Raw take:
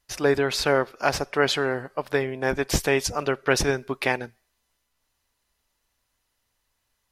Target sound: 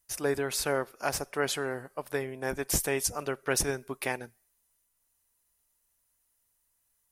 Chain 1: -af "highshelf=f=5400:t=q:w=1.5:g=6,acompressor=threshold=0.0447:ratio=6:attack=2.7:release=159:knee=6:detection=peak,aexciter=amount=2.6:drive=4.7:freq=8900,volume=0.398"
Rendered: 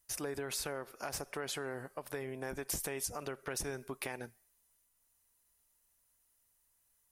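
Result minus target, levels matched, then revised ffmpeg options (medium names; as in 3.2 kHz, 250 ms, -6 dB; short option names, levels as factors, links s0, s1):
compression: peak gain reduction +14 dB
-af "highshelf=f=5400:t=q:w=1.5:g=6,aexciter=amount=2.6:drive=4.7:freq=8900,volume=0.398"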